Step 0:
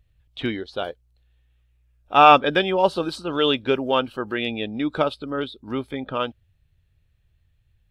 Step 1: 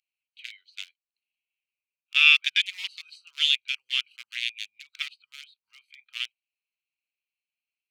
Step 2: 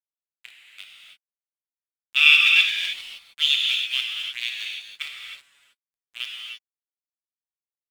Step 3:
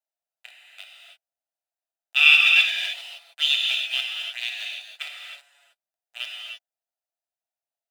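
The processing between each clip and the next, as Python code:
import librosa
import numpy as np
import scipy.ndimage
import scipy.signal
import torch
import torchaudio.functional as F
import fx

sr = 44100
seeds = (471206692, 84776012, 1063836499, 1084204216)

y1 = fx.wiener(x, sr, points=25)
y1 = scipy.signal.sosfilt(scipy.signal.ellip(4, 1.0, 70, 2200.0, 'highpass', fs=sr, output='sos'), y1)
y1 = F.gain(torch.from_numpy(y1), 7.0).numpy()
y2 = fx.env_lowpass(y1, sr, base_hz=2100.0, full_db=-24.0)
y2 = np.sign(y2) * np.maximum(np.abs(y2) - 10.0 ** (-40.5 / 20.0), 0.0)
y2 = fx.rev_gated(y2, sr, seeds[0], gate_ms=340, shape='flat', drr_db=-1.0)
y2 = F.gain(torch.from_numpy(y2), 1.0).numpy()
y3 = fx.highpass_res(y2, sr, hz=670.0, q=6.6)
y3 = fx.notch_comb(y3, sr, f0_hz=1100.0)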